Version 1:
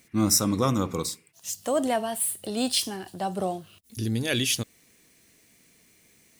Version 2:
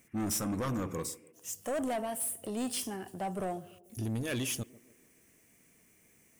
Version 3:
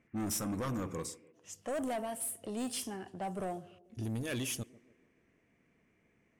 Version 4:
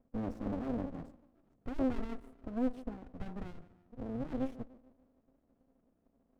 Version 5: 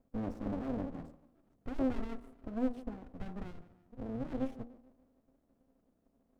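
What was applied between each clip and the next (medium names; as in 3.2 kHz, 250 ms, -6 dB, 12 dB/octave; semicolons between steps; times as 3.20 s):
peaking EQ 4.1 kHz -13 dB 0.67 oct; saturation -25.5 dBFS, distortion -9 dB; band-passed feedback delay 146 ms, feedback 53%, band-pass 360 Hz, level -17 dB; trim -3.5 dB
level-controlled noise filter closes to 2.1 kHz, open at -31 dBFS; trim -2.5 dB
local Wiener filter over 25 samples; two resonant band-passes 420 Hz, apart 1.3 oct; sliding maximum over 65 samples; trim +11.5 dB
de-hum 79.61 Hz, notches 17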